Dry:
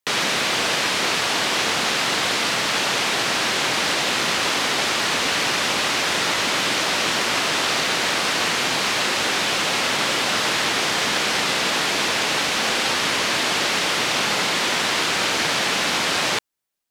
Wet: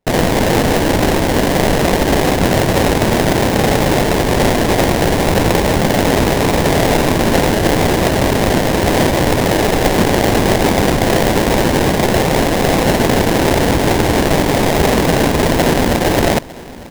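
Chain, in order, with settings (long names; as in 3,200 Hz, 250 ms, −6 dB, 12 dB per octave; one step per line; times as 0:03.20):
0:07.98–0:08.64: high-pass filter 400 Hz 24 dB per octave
sample-rate reduction 1,300 Hz, jitter 20%
repeating echo 903 ms, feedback 41%, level −20 dB
level +8.5 dB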